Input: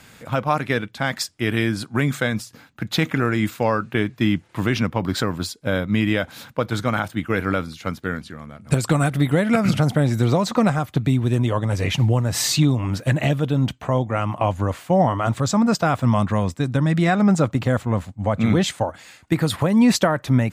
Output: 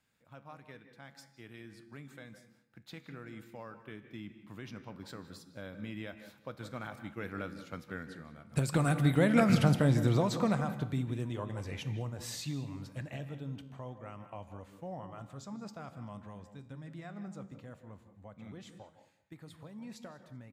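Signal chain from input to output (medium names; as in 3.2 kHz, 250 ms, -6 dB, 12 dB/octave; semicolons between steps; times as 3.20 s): Doppler pass-by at 9.50 s, 6 m/s, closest 3.7 m; feedback comb 69 Hz, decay 0.71 s, harmonics all, mix 50%; feedback delay 192 ms, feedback 34%, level -21.5 dB; on a send at -11 dB: reverberation RT60 0.45 s, pre-delay 151 ms; on the sum: trim -2 dB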